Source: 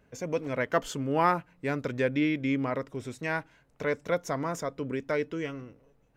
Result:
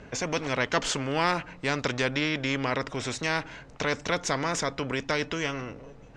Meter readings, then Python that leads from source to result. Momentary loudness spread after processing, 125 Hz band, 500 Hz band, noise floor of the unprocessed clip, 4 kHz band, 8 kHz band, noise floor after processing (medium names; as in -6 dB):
6 LU, +2.0 dB, -0.5 dB, -65 dBFS, +13.0 dB, +11.0 dB, -49 dBFS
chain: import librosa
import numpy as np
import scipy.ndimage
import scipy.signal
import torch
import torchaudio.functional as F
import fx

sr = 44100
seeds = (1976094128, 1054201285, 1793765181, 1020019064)

y = scipy.signal.sosfilt(scipy.signal.butter(4, 7000.0, 'lowpass', fs=sr, output='sos'), x)
y = fx.spectral_comp(y, sr, ratio=2.0)